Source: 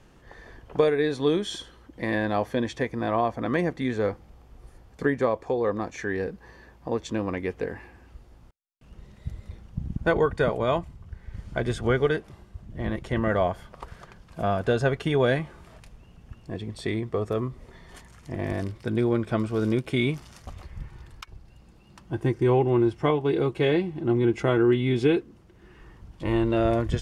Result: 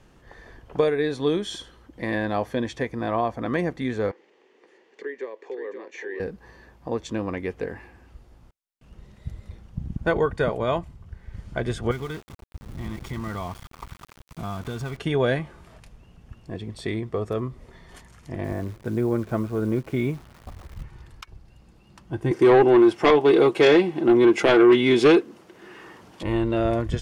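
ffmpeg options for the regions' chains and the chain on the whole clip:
-filter_complex "[0:a]asettb=1/sr,asplit=3[s0][s1][s2];[s0]atrim=end=4.114[s3];[s1]atrim=start=4.11:end=6.2,asetpts=PTS-STARTPTS,afade=t=in:d=0.004:c=qsin,afade=t=out:st=2.086:d=0.004:c=qsin,acompressor=threshold=0.00708:ratio=2:attack=3.2:release=140:knee=1:detection=peak,highpass=f=330:w=0.5412,highpass=f=330:w=1.3066,equalizer=f=400:t=q:w=4:g=10,equalizer=f=710:t=q:w=4:g=-9,equalizer=f=1300:t=q:w=4:g=-7,equalizer=f=1900:t=q:w=4:g=9,equalizer=f=2800:t=q:w=4:g=5,equalizer=f=5200:t=q:w=4:g=-4,lowpass=f=6500:w=0.5412,lowpass=f=6500:w=1.3066,aecho=1:1:526:0.422,atrim=end_sample=92169[s4];[s2]atrim=start=6.196[s5];[s3][s4]acrossfade=d=0.004:c1=hsin:c2=qsin[s6];[s6][s5]acrossfade=d=0.004:c1=qsin:c2=hsin,asettb=1/sr,asplit=3[s7][s8][s9];[s7]atrim=end=11.914[s10];[s8]atrim=start=11.91:end=14.97,asetpts=PTS-STARTPTS,afade=t=in:d=0.004:c=qsin,afade=t=out:st=3.056:d=0.004:c=qsin,aecho=1:1:0.9:0.69,atrim=end_sample=134946,acompressor=threshold=0.0282:ratio=2.5:attack=3.2:release=140:knee=1:detection=peak,aeval=exprs='val(0)*gte(abs(val(0)),0.00944)':c=same[s11];[s9]atrim=start=14.966[s12];[s10][s11]acrossfade=d=0.004:c1=hsin:c2=qsin[s13];[s13][s12]acrossfade=d=0.004:c1=qsin:c2=hsin,asettb=1/sr,asplit=3[s14][s15][s16];[s14]atrim=end=18.444[s17];[s15]atrim=start=18.44:end=20.83,asetpts=PTS-STARTPTS,afade=t=in:d=0.004:c=qsin,afade=t=out:st=2.386:d=0.004:c=qsin,lowpass=1700,acrusher=bits=9:dc=4:mix=0:aa=0.000001[s18];[s16]atrim=start=20.826[s19];[s17][s18]acrossfade=d=0.004:c1=hsin:c2=qsin[s20];[s20][s19]acrossfade=d=0.004:c1=qsin:c2=hsin,asettb=1/sr,asplit=3[s21][s22][s23];[s21]atrim=end=22.314[s24];[s22]atrim=start=22.31:end=26.23,asetpts=PTS-STARTPTS,afade=t=in:d=0.004:c=qsin,afade=t=out:st=3.916:d=0.004:c=qsin,highpass=310,aeval=exprs='0.316*sin(PI/2*2.24*val(0)/0.316)':c=same[s25];[s23]atrim=start=26.226[s26];[s24][s25]acrossfade=d=0.004:c1=hsin:c2=qsin[s27];[s27][s26]acrossfade=d=0.004:c1=qsin:c2=hsin"

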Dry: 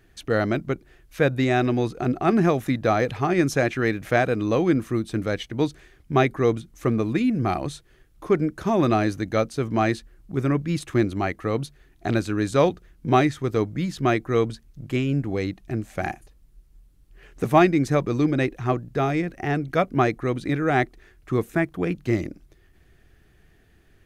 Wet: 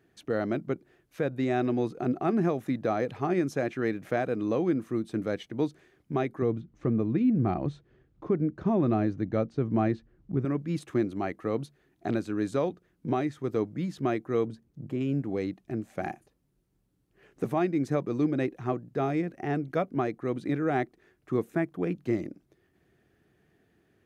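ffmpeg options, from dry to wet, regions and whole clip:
-filter_complex "[0:a]asettb=1/sr,asplit=3[s0][s1][s2];[s0]atrim=end=6.424[s3];[s1]atrim=start=6.42:end=10.45,asetpts=PTS-STARTPTS,afade=t=in:d=0.004:c=qsin,afade=t=out:st=4.026:d=0.004:c=qsin,lowpass=6700,aemphasis=mode=reproduction:type=bsi[s4];[s2]atrim=start=10.446[s5];[s3][s4]acrossfade=d=0.004:c1=hsin:c2=qsin[s6];[s6][s5]acrossfade=d=0.004:c1=qsin:c2=hsin,asettb=1/sr,asplit=3[s7][s8][s9];[s7]atrim=end=14.474[s10];[s8]atrim=start=14.47:end=15.01,asetpts=PTS-STARTPTS,afade=t=in:d=0.004:c=qsin,afade=t=out:st=0.536:d=0.004:c=qsin,highpass=44,tiltshelf=f=820:g=5,acompressor=threshold=0.0447:ratio=2:attack=3.2:release=140:knee=1:detection=peak[s11];[s9]atrim=start=15.006[s12];[s10][s11]acrossfade=d=0.004:c1=hsin:c2=qsin[s13];[s13][s12]acrossfade=d=0.004:c1=qsin:c2=hsin,highpass=160,tiltshelf=f=1100:g=4.5,alimiter=limit=0.335:level=0:latency=1:release=392,volume=0.447"

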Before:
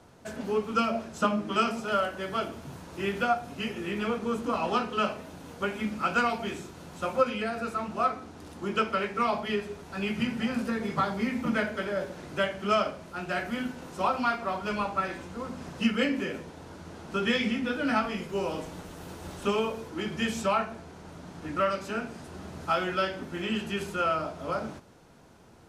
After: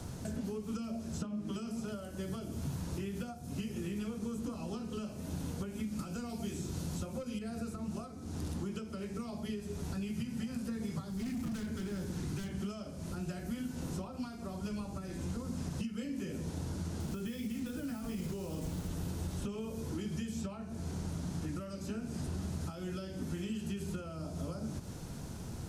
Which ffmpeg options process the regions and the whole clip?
-filter_complex "[0:a]asettb=1/sr,asplit=3[s0][s1][s2];[s0]atrim=end=5.994[s3];[s1]atrim=start=5.99:end=7.39,asetpts=PTS-STARTPTS,afade=t=in:d=0.004:c=qsin,afade=t=out:st=1.396:d=0.004:c=qsin,bass=f=250:g=-1,treble=f=4000:g=8,aeval=exprs='0.299*sin(PI/2*1.58*val(0)/0.299)':c=same[s4];[s2]atrim=start=7.386[s5];[s3][s4]acrossfade=d=0.004:c1=hsin:c2=qsin[s6];[s6][s5]acrossfade=d=0.004:c1=qsin:c2=hsin,asettb=1/sr,asplit=3[s7][s8][s9];[s7]atrim=end=11.104[s10];[s8]atrim=start=11.1:end=12.61,asetpts=PTS-STARTPTS,afade=t=in:d=0.004:c=qsin,afade=t=out:st=1.506:d=0.004:c=qsin,equalizer=f=590:w=4.4:g=-14,volume=42.2,asoftclip=hard,volume=0.0237[s11];[s9]atrim=start=12.606[s12];[s10][s11]acrossfade=d=0.004:c1=hsin:c2=qsin[s13];[s13][s12]acrossfade=d=0.004:c1=qsin:c2=hsin,asettb=1/sr,asplit=3[s14][s15][s16];[s14]atrim=end=17.004[s17];[s15]atrim=start=17:end=18.88,asetpts=PTS-STARTPTS,afade=t=in:d=0.004:c=qsin,afade=t=out:st=1.876:d=0.004:c=qsin,acompressor=threshold=0.0178:ratio=8:attack=3.2:release=140:knee=1:detection=peak,acrusher=bits=7:mix=0:aa=0.5[s18];[s16]atrim=start=18.876[s19];[s17][s18]acrossfade=d=0.004:c1=hsin:c2=qsin[s20];[s20][s19]acrossfade=d=0.004:c1=qsin:c2=hsin,acompressor=threshold=0.00794:ratio=6,bass=f=250:g=13,treble=f=4000:g=12,acrossover=split=540|4900[s21][s22][s23];[s21]acompressor=threshold=0.01:ratio=4[s24];[s22]acompressor=threshold=0.00126:ratio=4[s25];[s23]acompressor=threshold=0.001:ratio=4[s26];[s24][s25][s26]amix=inputs=3:normalize=0,volume=1.68"

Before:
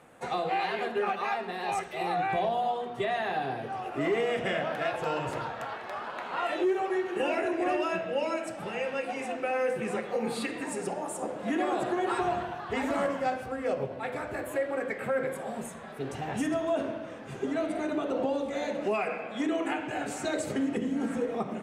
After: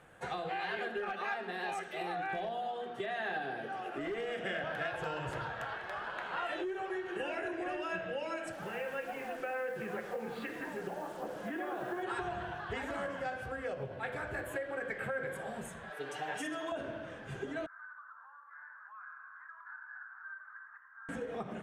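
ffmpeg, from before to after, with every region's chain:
-filter_complex "[0:a]asettb=1/sr,asplit=3[s0][s1][s2];[s0]atrim=end=0.774[s3];[s1]atrim=start=0.77:end=4.64,asetpts=PTS-STARTPTS,afade=t=in:d=0.004:c=qsin,afade=t=out:st=3.866:d=0.004:c=qsin,lowshelf=f=150:t=q:w=1.5:g=-13,bandreject=f=1000:w=9.3,asoftclip=type=hard:threshold=0.0891[s4];[s2]atrim=start=4.636[s5];[s3][s4]acrossfade=d=0.004:c1=hsin:c2=qsin[s6];[s6][s5]acrossfade=d=0.004:c1=qsin:c2=hsin,asettb=1/sr,asplit=3[s7][s8][s9];[s7]atrim=end=8.524[s10];[s8]atrim=start=8.52:end=12.03,asetpts=PTS-STARTPTS,afade=t=in:d=0.004:c=qsin,afade=t=out:st=3.506:d=0.004:c=qsin,highpass=150,lowpass=2400,acrusher=bits=7:mix=0:aa=0.5[s11];[s9]atrim=start=12.026[s12];[s10][s11]acrossfade=d=0.004:c1=hsin:c2=qsin[s13];[s13][s12]acrossfade=d=0.004:c1=qsin:c2=hsin,asettb=1/sr,asplit=3[s14][s15][s16];[s14]atrim=end=15.904[s17];[s15]atrim=start=15.9:end=16.72,asetpts=PTS-STARTPTS,afade=t=in:d=0.004:c=qsin,afade=t=out:st=0.816:d=0.004:c=qsin,highpass=420,aecho=1:1:6.7:0.91,atrim=end_sample=36162[s18];[s16]atrim=start=16.716[s19];[s17][s18]acrossfade=d=0.004:c1=hsin:c2=qsin[s20];[s20][s19]acrossfade=d=0.004:c1=qsin:c2=hsin,asettb=1/sr,asplit=3[s21][s22][s23];[s21]atrim=end=17.664[s24];[s22]atrim=start=17.66:end=21.09,asetpts=PTS-STARTPTS,afade=t=in:d=0.004:c=qsin,afade=t=out:st=3.426:d=0.004:c=qsin,asuperpass=centerf=1300:order=8:qfactor=2,acompressor=threshold=0.00398:ratio=2.5:attack=3.2:release=140:knee=1:detection=peak[s25];[s23]atrim=start=21.086[s26];[s24][s25]acrossfade=d=0.004:c1=hsin:c2=qsin[s27];[s27][s26]acrossfade=d=0.004:c1=qsin:c2=hsin,lowshelf=f=120:g=11.5,acompressor=threshold=0.0355:ratio=6,equalizer=f=250:t=o:w=0.33:g=-8,equalizer=f=1600:t=o:w=0.33:g=9,equalizer=f=3150:t=o:w=0.33:g=5,volume=0.531"

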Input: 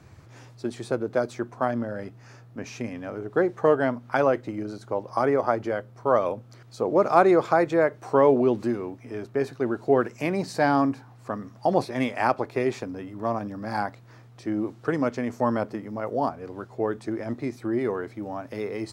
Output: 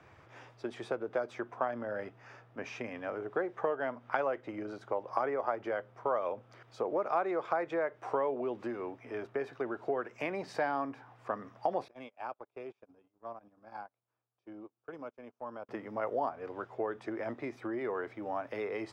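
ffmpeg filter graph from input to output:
-filter_complex "[0:a]asettb=1/sr,asplit=3[s0][s1][s2];[s0]atrim=end=11.884[s3];[s1]atrim=start=11.88:end=15.69,asetpts=PTS-STARTPTS,afade=t=in:d=0.004:c=qsin,afade=t=out:st=3.806:d=0.004:c=qsin,equalizer=f=1900:w=6.1:g=-14.5,acompressor=threshold=0.00708:ratio=2.5:attack=3.2:release=140:knee=1:detection=peak,agate=range=0.0251:threshold=0.00891:ratio=16:release=100:detection=peak[s4];[s2]atrim=start=15.686[s5];[s3][s4]acrossfade=d=0.004:c1=hsin:c2=qsin[s6];[s6][s5]acrossfade=d=0.004:c1=qsin:c2=hsin,acompressor=threshold=0.0447:ratio=5,acrossover=split=400 3900:gain=0.224 1 0.141[s7][s8][s9];[s7][s8][s9]amix=inputs=3:normalize=0,bandreject=f=4200:w=7.6"

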